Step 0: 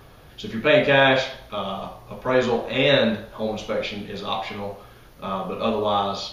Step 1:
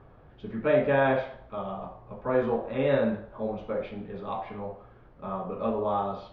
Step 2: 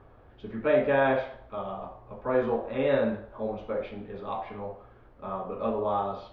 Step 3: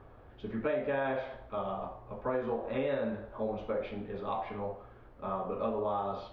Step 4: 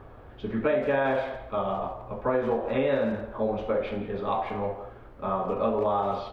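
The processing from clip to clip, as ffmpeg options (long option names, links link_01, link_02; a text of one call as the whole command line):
ffmpeg -i in.wav -af "lowpass=1300,volume=-5dB" out.wav
ffmpeg -i in.wav -af "equalizer=frequency=160:width=3.8:gain=-11.5" out.wav
ffmpeg -i in.wav -af "acompressor=threshold=-29dB:ratio=6" out.wav
ffmpeg -i in.wav -filter_complex "[0:a]asplit=2[link_01][link_02];[link_02]adelay=170,highpass=300,lowpass=3400,asoftclip=type=hard:threshold=-29dB,volume=-12dB[link_03];[link_01][link_03]amix=inputs=2:normalize=0,volume=7dB" out.wav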